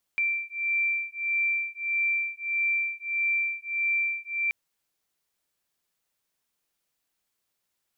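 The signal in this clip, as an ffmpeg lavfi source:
ffmpeg -f lavfi -i "aevalsrc='0.0398*(sin(2*PI*2350*t)+sin(2*PI*2351.6*t))':duration=4.33:sample_rate=44100" out.wav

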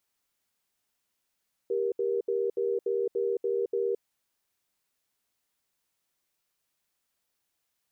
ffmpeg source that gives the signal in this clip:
ffmpeg -f lavfi -i "aevalsrc='0.0398*(sin(2*PI*394*t)+sin(2*PI*472*t))*clip(min(mod(t,0.29),0.22-mod(t,0.29))/0.005,0,1)':duration=2.32:sample_rate=44100" out.wav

